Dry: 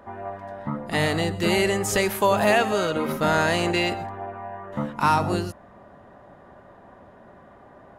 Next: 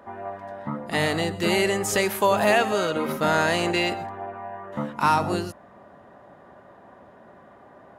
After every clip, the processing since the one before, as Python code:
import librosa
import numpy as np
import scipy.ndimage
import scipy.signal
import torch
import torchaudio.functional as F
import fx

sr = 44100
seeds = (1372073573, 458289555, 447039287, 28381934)

y = fx.highpass(x, sr, hz=140.0, slope=6)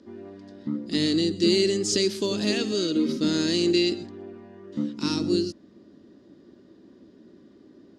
y = fx.curve_eq(x, sr, hz=(140.0, 320.0, 750.0, 2300.0, 4800.0, 8800.0, 14000.0), db=(0, 14, -19, -5, 15, -1, -23))
y = y * 10.0 ** (-5.0 / 20.0)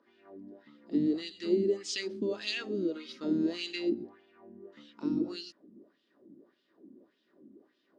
y = fx.wah_lfo(x, sr, hz=1.7, low_hz=230.0, high_hz=3300.0, q=2.4)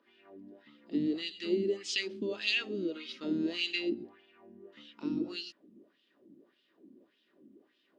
y = fx.peak_eq(x, sr, hz=2800.0, db=10.0, octaves=1.0)
y = y * 10.0 ** (-3.0 / 20.0)